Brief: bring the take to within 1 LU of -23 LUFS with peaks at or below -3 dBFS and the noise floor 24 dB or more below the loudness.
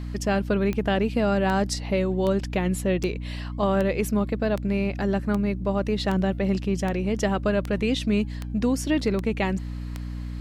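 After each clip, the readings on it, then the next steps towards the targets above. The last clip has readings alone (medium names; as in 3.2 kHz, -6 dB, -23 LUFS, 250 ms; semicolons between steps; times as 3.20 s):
clicks found 13; hum 60 Hz; highest harmonic 300 Hz; hum level -30 dBFS; loudness -25.0 LUFS; peak level -11.0 dBFS; loudness target -23.0 LUFS
-> de-click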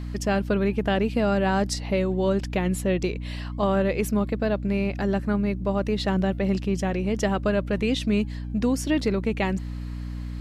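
clicks found 0; hum 60 Hz; highest harmonic 300 Hz; hum level -30 dBFS
-> hum notches 60/120/180/240/300 Hz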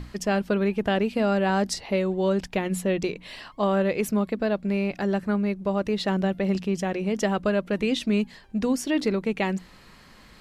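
hum not found; loudness -25.5 LUFS; peak level -12.0 dBFS; loudness target -23.0 LUFS
-> trim +2.5 dB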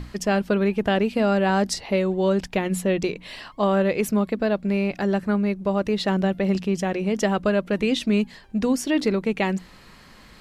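loudness -23.0 LUFS; peak level -9.5 dBFS; noise floor -49 dBFS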